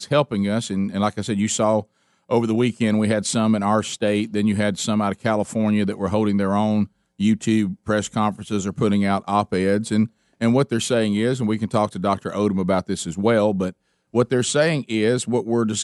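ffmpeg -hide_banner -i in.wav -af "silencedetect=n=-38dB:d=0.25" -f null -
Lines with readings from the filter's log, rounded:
silence_start: 1.83
silence_end: 2.29 | silence_duration: 0.47
silence_start: 6.86
silence_end: 7.20 | silence_duration: 0.34
silence_start: 10.07
silence_end: 10.41 | silence_duration: 0.34
silence_start: 13.71
silence_end: 14.14 | silence_duration: 0.43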